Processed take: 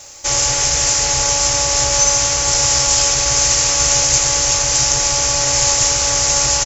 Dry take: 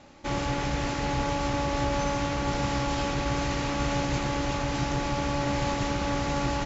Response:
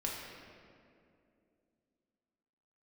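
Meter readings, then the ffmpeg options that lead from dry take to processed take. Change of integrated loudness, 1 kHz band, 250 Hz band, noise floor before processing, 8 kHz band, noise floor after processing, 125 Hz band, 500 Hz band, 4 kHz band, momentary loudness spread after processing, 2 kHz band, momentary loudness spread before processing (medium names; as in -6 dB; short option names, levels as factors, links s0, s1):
+16.0 dB, +6.5 dB, -5.0 dB, -30 dBFS, no reading, -17 dBFS, +3.0 dB, +6.5 dB, +20.0 dB, 2 LU, +10.0 dB, 1 LU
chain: -af "firequalizer=gain_entry='entry(120,0);entry(200,-17);entry(460,2);entry(850,1);entry(4500,13)':delay=0.05:min_phase=1,aexciter=amount=7.2:drive=2.3:freq=5600,volume=1.78"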